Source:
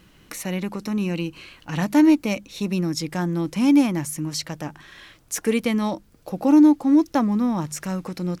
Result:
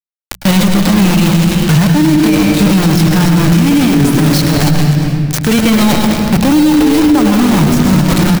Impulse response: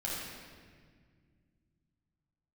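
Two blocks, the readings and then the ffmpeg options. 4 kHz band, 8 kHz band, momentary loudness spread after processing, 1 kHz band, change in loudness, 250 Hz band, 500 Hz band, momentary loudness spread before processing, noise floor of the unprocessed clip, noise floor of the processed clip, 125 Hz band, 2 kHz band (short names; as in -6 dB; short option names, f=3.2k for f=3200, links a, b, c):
+17.5 dB, +13.0 dB, 3 LU, +12.5 dB, +12.0 dB, +11.0 dB, +11.0 dB, 16 LU, -55 dBFS, -29 dBFS, +20.0 dB, +15.0 dB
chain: -filter_complex "[0:a]aeval=exprs='val(0)+0.5*0.0237*sgn(val(0))':c=same,equalizer=f=125:t=o:w=1:g=6,equalizer=f=250:t=o:w=1:g=-7,equalizer=f=500:t=o:w=1:g=-9,equalizer=f=4k:t=o:w=1:g=9,agate=range=-33dB:threshold=-31dB:ratio=3:detection=peak,deesser=0.9,highpass=60,asplit=4[a][b][c][d];[b]adelay=285,afreqshift=140,volume=-12dB[e];[c]adelay=570,afreqshift=280,volume=-21.4dB[f];[d]adelay=855,afreqshift=420,volume=-30.7dB[g];[a][e][f][g]amix=inputs=4:normalize=0,acrusher=bits=4:mix=0:aa=0.000001,acontrast=77,lowshelf=f=150:g=10,bandreject=f=60:t=h:w=6,bandreject=f=120:t=h:w=6,bandreject=f=180:t=h:w=6,asplit=2[h][i];[1:a]atrim=start_sample=2205,adelay=103[j];[i][j]afir=irnorm=-1:irlink=0,volume=-7.5dB[k];[h][k]amix=inputs=2:normalize=0,alimiter=level_in=13.5dB:limit=-1dB:release=50:level=0:latency=1,volume=-1dB"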